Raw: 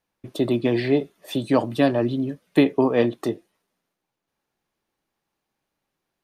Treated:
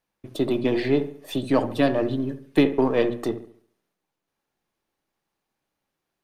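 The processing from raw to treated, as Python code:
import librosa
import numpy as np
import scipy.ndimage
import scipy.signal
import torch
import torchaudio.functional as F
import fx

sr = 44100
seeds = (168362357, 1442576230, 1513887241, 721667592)

y = np.where(x < 0.0, 10.0 ** (-3.0 / 20.0) * x, x)
y = fx.hum_notches(y, sr, base_hz=60, count=4)
y = fx.echo_wet_lowpass(y, sr, ms=70, feedback_pct=41, hz=2100.0, wet_db=-12.0)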